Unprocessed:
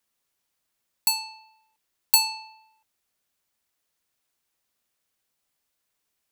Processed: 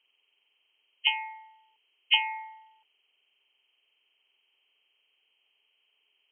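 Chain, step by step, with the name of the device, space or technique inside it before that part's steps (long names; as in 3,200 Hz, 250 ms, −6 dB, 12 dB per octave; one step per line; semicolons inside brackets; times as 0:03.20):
hearing aid with frequency lowering (hearing-aid frequency compression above 1,700 Hz 4 to 1; downward compressor 2 to 1, threshold −22 dBFS, peak gain reduction 6.5 dB; loudspeaker in its box 390–5,500 Hz, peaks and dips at 410 Hz +10 dB, 900 Hz +4 dB, 1,900 Hz −8 dB)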